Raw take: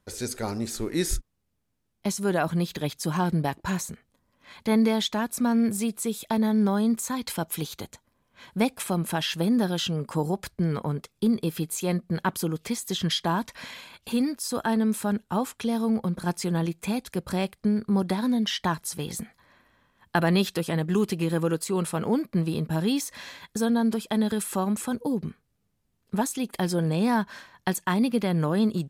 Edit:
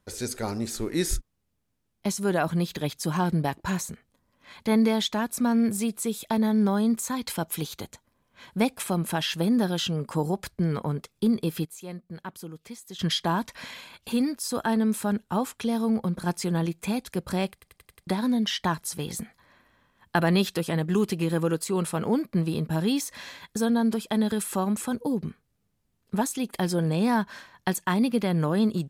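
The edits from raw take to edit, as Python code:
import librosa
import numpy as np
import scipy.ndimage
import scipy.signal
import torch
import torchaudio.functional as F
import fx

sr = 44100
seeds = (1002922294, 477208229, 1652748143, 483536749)

y = fx.edit(x, sr, fx.clip_gain(start_s=11.65, length_s=1.34, db=-12.0),
    fx.stutter_over(start_s=17.53, slice_s=0.09, count=6), tone=tone)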